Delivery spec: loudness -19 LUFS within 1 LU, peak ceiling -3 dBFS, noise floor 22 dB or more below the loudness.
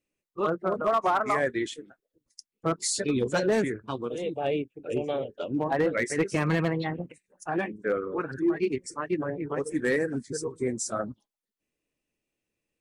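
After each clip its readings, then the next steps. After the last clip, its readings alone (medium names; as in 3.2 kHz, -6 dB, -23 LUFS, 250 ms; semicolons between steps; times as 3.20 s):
clipped samples 0.4%; clipping level -17.5 dBFS; loudness -29.0 LUFS; peak level -17.5 dBFS; loudness target -19.0 LUFS
-> clip repair -17.5 dBFS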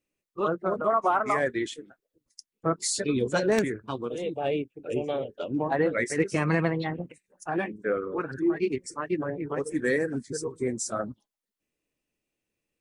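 clipped samples 0.0%; loudness -28.5 LUFS; peak level -8.5 dBFS; loudness target -19.0 LUFS
-> trim +9.5 dB; peak limiter -3 dBFS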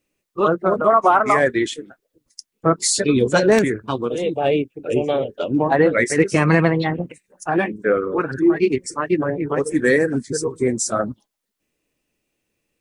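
loudness -19.0 LUFS; peak level -3.0 dBFS; noise floor -78 dBFS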